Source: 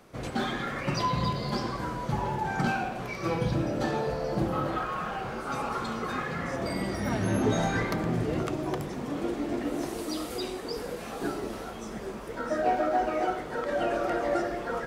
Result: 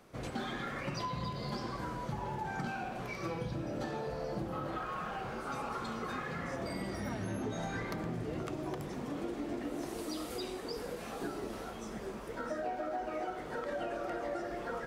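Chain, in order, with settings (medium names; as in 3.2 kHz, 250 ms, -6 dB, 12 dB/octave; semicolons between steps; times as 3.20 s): compression 5:1, threshold -30 dBFS, peak gain reduction 9 dB; trim -4.5 dB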